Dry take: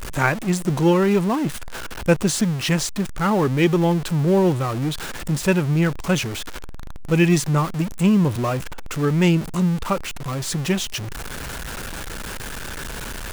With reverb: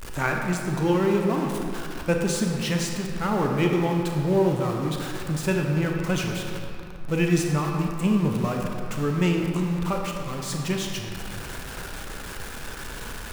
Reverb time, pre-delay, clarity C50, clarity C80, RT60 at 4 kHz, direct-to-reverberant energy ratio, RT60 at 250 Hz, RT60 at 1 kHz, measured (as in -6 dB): 2.6 s, 27 ms, 2.0 dB, 3.0 dB, 1.5 s, 1.0 dB, 2.6 s, 2.6 s